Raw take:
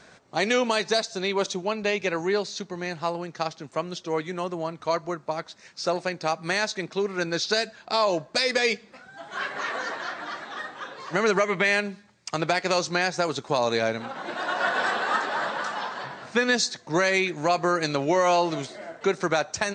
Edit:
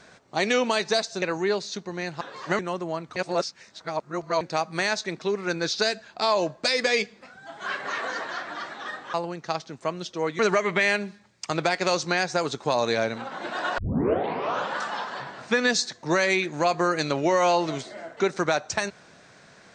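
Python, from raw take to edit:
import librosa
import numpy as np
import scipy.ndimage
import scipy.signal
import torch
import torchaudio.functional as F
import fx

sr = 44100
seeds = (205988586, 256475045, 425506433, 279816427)

y = fx.edit(x, sr, fx.cut(start_s=1.22, length_s=0.84),
    fx.swap(start_s=3.05, length_s=1.25, other_s=10.85, other_length_s=0.38),
    fx.reverse_span(start_s=4.87, length_s=1.25),
    fx.tape_start(start_s=14.62, length_s=0.95), tone=tone)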